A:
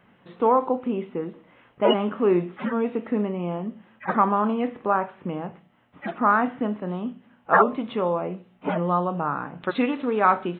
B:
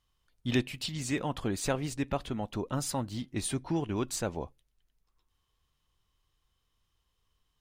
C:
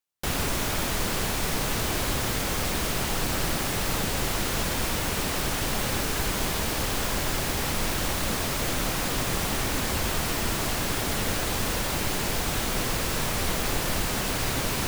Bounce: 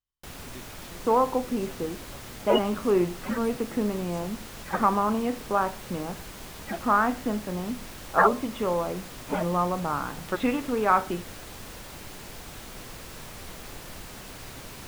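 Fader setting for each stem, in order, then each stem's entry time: -2.5 dB, -18.0 dB, -14.5 dB; 0.65 s, 0.00 s, 0.00 s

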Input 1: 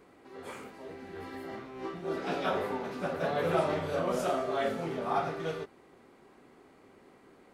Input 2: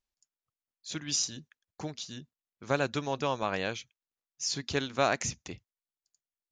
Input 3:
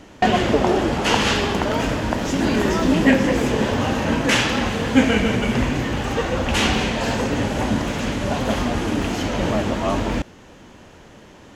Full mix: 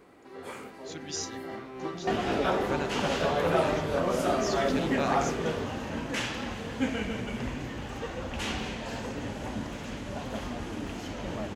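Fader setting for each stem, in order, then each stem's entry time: +2.5 dB, -6.0 dB, -14.0 dB; 0.00 s, 0.00 s, 1.85 s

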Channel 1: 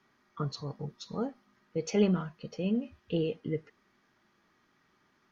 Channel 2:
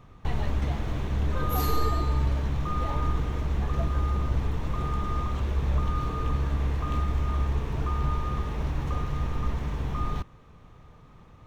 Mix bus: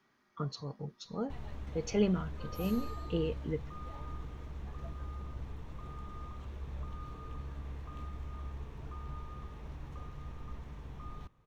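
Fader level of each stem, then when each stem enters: -3.0 dB, -16.0 dB; 0.00 s, 1.05 s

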